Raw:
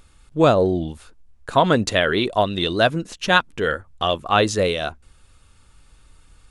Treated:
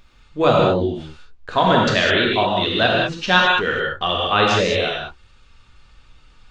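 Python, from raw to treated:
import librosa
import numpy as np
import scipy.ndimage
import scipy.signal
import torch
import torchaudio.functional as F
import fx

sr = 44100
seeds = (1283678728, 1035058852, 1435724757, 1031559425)

y = scipy.ndimage.gaussian_filter1d(x, 1.9, mode='constant')
y = fx.high_shelf(y, sr, hz=2100.0, db=10.5)
y = fx.rev_gated(y, sr, seeds[0], gate_ms=230, shape='flat', drr_db=-3.0)
y = y * 10.0 ** (-3.5 / 20.0)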